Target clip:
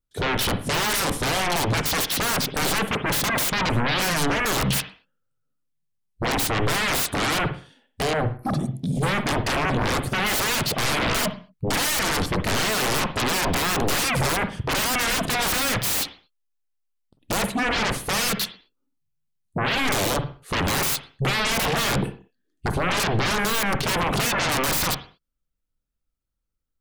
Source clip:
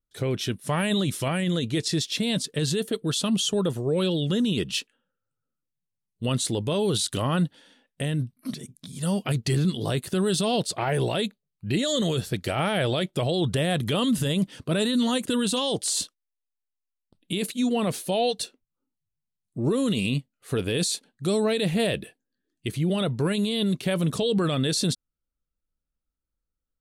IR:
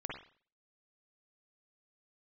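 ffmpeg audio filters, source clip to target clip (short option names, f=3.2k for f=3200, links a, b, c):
-filter_complex "[0:a]afwtdn=0.0158,aeval=exprs='0.178*sin(PI/2*8.91*val(0)/0.178)':c=same,asplit=2[a][b];[b]bass=f=250:g=5,treble=f=4k:g=0[c];[1:a]atrim=start_sample=2205,afade=t=out:st=0.29:d=0.01,atrim=end_sample=13230[d];[c][d]afir=irnorm=-1:irlink=0,volume=-5.5dB[e];[a][e]amix=inputs=2:normalize=0,volume=-8dB"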